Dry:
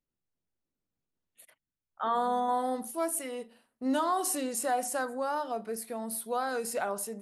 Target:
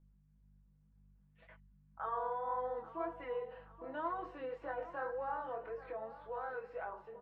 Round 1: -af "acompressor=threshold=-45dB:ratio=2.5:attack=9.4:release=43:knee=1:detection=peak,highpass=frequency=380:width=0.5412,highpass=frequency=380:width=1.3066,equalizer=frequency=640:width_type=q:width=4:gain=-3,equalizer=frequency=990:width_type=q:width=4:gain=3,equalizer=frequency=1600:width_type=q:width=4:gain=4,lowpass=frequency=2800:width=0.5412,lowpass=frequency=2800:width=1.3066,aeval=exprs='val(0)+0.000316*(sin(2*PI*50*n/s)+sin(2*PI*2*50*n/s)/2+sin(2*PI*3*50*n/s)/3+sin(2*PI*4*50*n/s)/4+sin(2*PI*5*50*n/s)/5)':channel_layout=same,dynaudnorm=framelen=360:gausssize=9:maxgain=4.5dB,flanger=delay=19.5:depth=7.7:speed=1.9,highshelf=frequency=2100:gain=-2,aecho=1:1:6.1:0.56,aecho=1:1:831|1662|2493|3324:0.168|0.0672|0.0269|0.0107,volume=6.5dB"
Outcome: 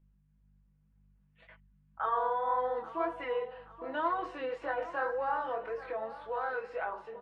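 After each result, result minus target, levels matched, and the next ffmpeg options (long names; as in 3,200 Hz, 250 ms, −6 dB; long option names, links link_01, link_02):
downward compressor: peak gain reduction −5.5 dB; 4,000 Hz band +5.0 dB
-af "acompressor=threshold=-54.5dB:ratio=2.5:attack=9.4:release=43:knee=1:detection=peak,highpass=frequency=380:width=0.5412,highpass=frequency=380:width=1.3066,equalizer=frequency=640:width_type=q:width=4:gain=-3,equalizer=frequency=990:width_type=q:width=4:gain=3,equalizer=frequency=1600:width_type=q:width=4:gain=4,lowpass=frequency=2800:width=0.5412,lowpass=frequency=2800:width=1.3066,aeval=exprs='val(0)+0.000316*(sin(2*PI*50*n/s)+sin(2*PI*2*50*n/s)/2+sin(2*PI*3*50*n/s)/3+sin(2*PI*4*50*n/s)/4+sin(2*PI*5*50*n/s)/5)':channel_layout=same,dynaudnorm=framelen=360:gausssize=9:maxgain=4.5dB,flanger=delay=19.5:depth=7.7:speed=1.9,highshelf=frequency=2100:gain=-2,aecho=1:1:6.1:0.56,aecho=1:1:831|1662|2493|3324:0.168|0.0672|0.0269|0.0107,volume=6.5dB"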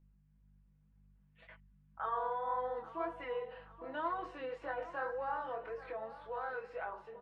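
4,000 Hz band +5.5 dB
-af "acompressor=threshold=-54.5dB:ratio=2.5:attack=9.4:release=43:knee=1:detection=peak,highpass=frequency=380:width=0.5412,highpass=frequency=380:width=1.3066,equalizer=frequency=640:width_type=q:width=4:gain=-3,equalizer=frequency=990:width_type=q:width=4:gain=3,equalizer=frequency=1600:width_type=q:width=4:gain=4,lowpass=frequency=2800:width=0.5412,lowpass=frequency=2800:width=1.3066,aeval=exprs='val(0)+0.000316*(sin(2*PI*50*n/s)+sin(2*PI*2*50*n/s)/2+sin(2*PI*3*50*n/s)/3+sin(2*PI*4*50*n/s)/4+sin(2*PI*5*50*n/s)/5)':channel_layout=same,dynaudnorm=framelen=360:gausssize=9:maxgain=4.5dB,flanger=delay=19.5:depth=7.7:speed=1.9,highshelf=frequency=2100:gain=-12,aecho=1:1:6.1:0.56,aecho=1:1:831|1662|2493|3324:0.168|0.0672|0.0269|0.0107,volume=6.5dB"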